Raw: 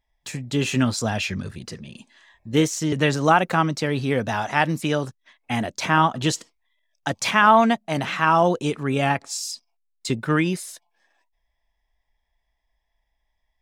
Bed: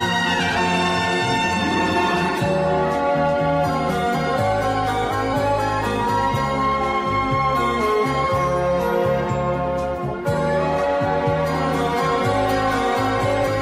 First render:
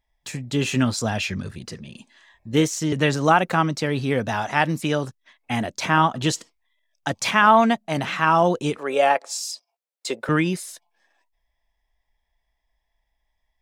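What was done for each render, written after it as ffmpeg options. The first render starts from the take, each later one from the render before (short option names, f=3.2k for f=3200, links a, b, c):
-filter_complex "[0:a]asettb=1/sr,asplit=3[a][b][c];[a]atrim=end=8.774[d];[b]atrim=start=8.77:end=10.29,asetpts=PTS-STARTPTS,afade=t=in:d=0.004:c=qsin,afade=t=out:st=1.516:d=0.004:c=qsin,highpass=f=530:t=q:w=3[e];[c]atrim=start=10.286[f];[d][e]acrossfade=d=0.004:c1=hsin:c2=qsin[g];[g][f]acrossfade=d=0.004:c1=qsin:c2=hsin"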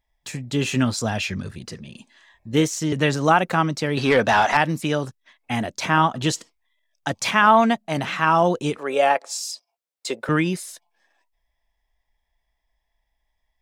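-filter_complex "[0:a]asettb=1/sr,asplit=3[a][b][c];[a]atrim=end=3.974[d];[b]atrim=start=3.97:end=4.57,asetpts=PTS-STARTPTS,afade=t=in:d=0.004:c=qsin,afade=t=out:st=0.596:d=0.004:c=qsin,asplit=2[e][f];[f]highpass=f=720:p=1,volume=19dB,asoftclip=type=tanh:threshold=-5.5dB[g];[e][g]amix=inputs=2:normalize=0,lowpass=f=3.5k:p=1,volume=-6dB[h];[c]atrim=start=4.566[i];[d][h]acrossfade=d=0.004:c1=hsin:c2=qsin[j];[j][i]acrossfade=d=0.004:c1=qsin:c2=hsin"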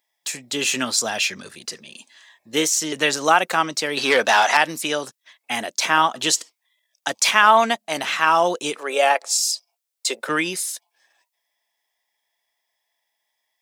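-af "highpass=370,highshelf=f=2.9k:g=11"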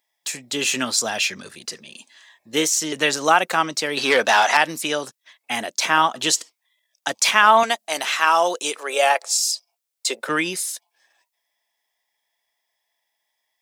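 -filter_complex "[0:a]asettb=1/sr,asplit=3[a][b][c];[a]atrim=end=7.634[d];[b]atrim=start=7.63:end=9.26,asetpts=PTS-STARTPTS,afade=t=in:d=0.004:c=qsin,afade=t=out:st=1.626:d=0.004:c=qsin,bass=f=250:g=-15,treble=f=4k:g=5[e];[c]atrim=start=9.256[f];[d][e]acrossfade=d=0.004:c1=hsin:c2=qsin[g];[g][f]acrossfade=d=0.004:c1=qsin:c2=hsin"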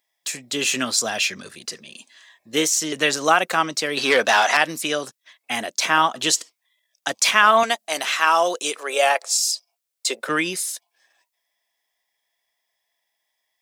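-af "bandreject=f=880:w=12"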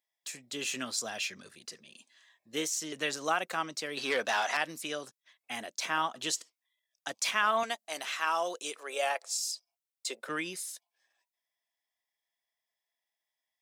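-af "volume=-13dB"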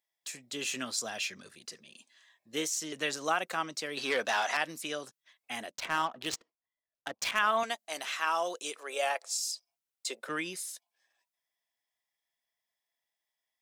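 -filter_complex "[0:a]asettb=1/sr,asplit=3[a][b][c];[a]atrim=end=5.714[d];[b]atrim=start=5.71:end=7.39,asetpts=PTS-STARTPTS,afade=t=in:d=0.004:c=qsin,afade=t=out:st=1.676:d=0.004:c=qsin,adynamicsmooth=sensitivity=6.5:basefreq=1.1k[e];[c]atrim=start=7.386[f];[d][e]acrossfade=d=0.004:c1=hsin:c2=qsin[g];[g][f]acrossfade=d=0.004:c1=qsin:c2=hsin"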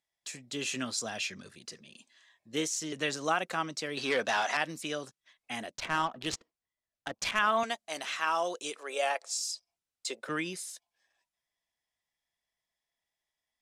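-af "lowpass=10k,lowshelf=f=190:g=11"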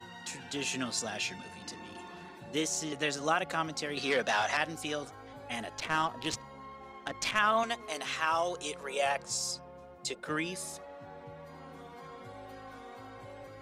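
-filter_complex "[1:a]volume=-28dB[a];[0:a][a]amix=inputs=2:normalize=0"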